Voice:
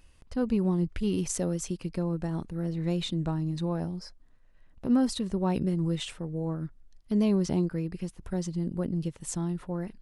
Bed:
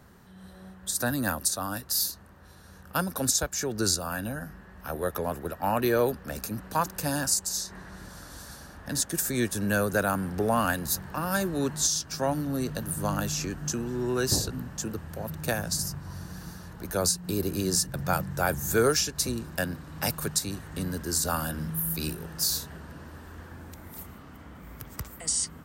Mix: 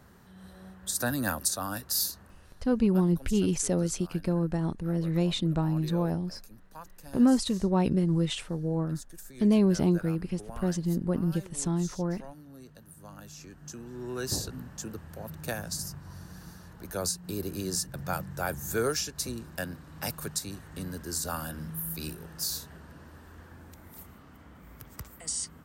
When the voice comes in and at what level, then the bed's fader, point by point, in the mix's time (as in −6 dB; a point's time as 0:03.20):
2.30 s, +2.5 dB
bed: 0:02.26 −1.5 dB
0:03.03 −19.5 dB
0:13.07 −19.5 dB
0:14.36 −5.5 dB